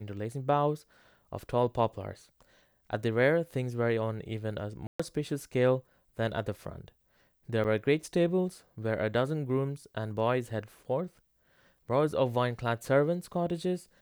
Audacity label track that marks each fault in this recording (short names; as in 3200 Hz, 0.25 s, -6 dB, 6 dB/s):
4.870000	5.000000	gap 0.125 s
7.640000	7.650000	gap 7.2 ms